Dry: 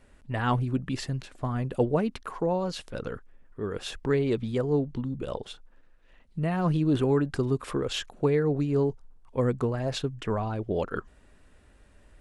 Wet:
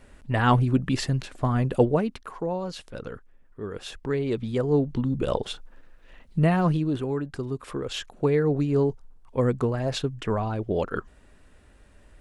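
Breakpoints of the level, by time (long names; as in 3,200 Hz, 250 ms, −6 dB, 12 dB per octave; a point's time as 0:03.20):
0:01.76 +6 dB
0:02.20 −2 dB
0:04.13 −2 dB
0:05.27 +8 dB
0:06.45 +8 dB
0:07.00 −4.5 dB
0:07.51 −4.5 dB
0:08.41 +2.5 dB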